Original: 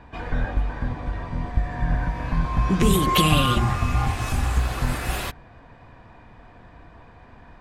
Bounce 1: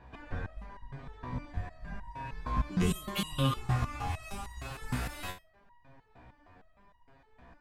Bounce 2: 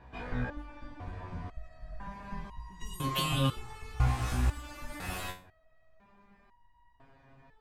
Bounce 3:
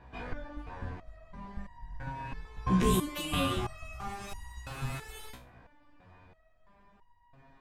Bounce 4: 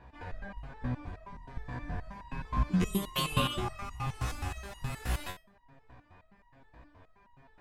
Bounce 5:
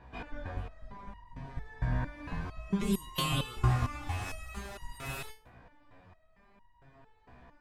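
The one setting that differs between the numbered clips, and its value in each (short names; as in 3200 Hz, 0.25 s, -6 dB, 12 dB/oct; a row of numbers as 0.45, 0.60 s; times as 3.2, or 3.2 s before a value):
stepped resonator, rate: 6.5, 2, 3, 9.5, 4.4 Hz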